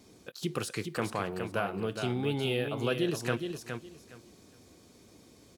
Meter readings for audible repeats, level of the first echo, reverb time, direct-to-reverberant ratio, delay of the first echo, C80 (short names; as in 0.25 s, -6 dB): 3, -6.5 dB, none, none, 0.415 s, none